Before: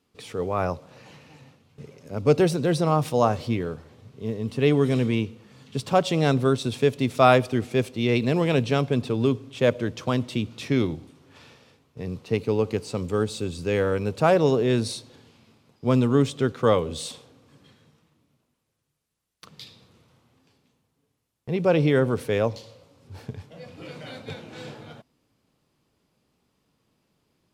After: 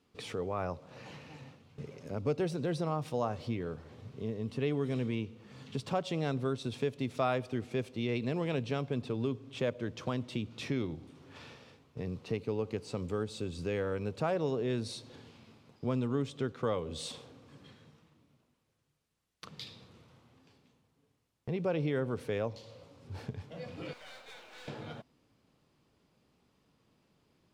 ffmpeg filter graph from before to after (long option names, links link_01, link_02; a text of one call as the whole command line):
ffmpeg -i in.wav -filter_complex "[0:a]asettb=1/sr,asplit=3[link_01][link_02][link_03];[link_01]atrim=end=23.934[link_04];[link_02]atrim=start=23.93:end=24.68,asetpts=PTS-STARTPTS,afade=type=in:duration=0.004:curve=qsin,afade=type=out:start_time=0.746:duration=0.004:curve=qsin,highpass=810,acrusher=bits=3:mode=log:mix=0:aa=0.000001,aeval=exprs='(tanh(224*val(0)+0.6)-tanh(0.6))/224':channel_layout=same[link_05];[link_03]atrim=start=24.676[link_06];[link_04][link_05]acrossfade=duration=0.004:curve1=hsin:curve2=qsin[link_07];[link_07][link_06]acrossfade=duration=0.004:curve1=qsin:curve2=hsin,highshelf=frequency=8700:gain=-10.5,acompressor=threshold=-39dB:ratio=2" out.wav